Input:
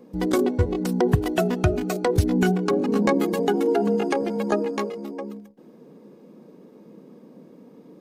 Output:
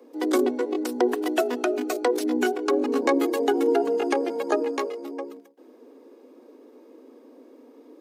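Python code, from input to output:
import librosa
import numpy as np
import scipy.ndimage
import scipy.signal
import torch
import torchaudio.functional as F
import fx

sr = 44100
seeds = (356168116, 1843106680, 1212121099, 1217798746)

y = scipy.signal.sosfilt(scipy.signal.butter(16, 250.0, 'highpass', fs=sr, output='sos'), x)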